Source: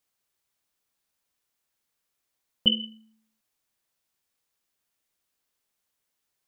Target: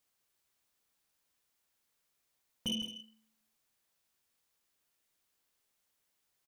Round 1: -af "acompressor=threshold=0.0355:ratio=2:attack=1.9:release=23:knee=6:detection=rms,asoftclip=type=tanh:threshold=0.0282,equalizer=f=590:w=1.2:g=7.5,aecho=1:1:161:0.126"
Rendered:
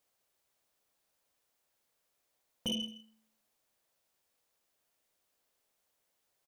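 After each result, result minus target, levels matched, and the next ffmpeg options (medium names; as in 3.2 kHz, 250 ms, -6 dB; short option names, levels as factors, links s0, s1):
echo-to-direct -8 dB; 500 Hz band +5.0 dB
-af "acompressor=threshold=0.0355:ratio=2:attack=1.9:release=23:knee=6:detection=rms,asoftclip=type=tanh:threshold=0.0282,equalizer=f=590:w=1.2:g=7.5,aecho=1:1:161:0.316"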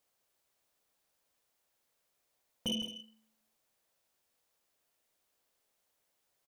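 500 Hz band +5.5 dB
-af "acompressor=threshold=0.0355:ratio=2:attack=1.9:release=23:knee=6:detection=rms,asoftclip=type=tanh:threshold=0.0282,aecho=1:1:161:0.316"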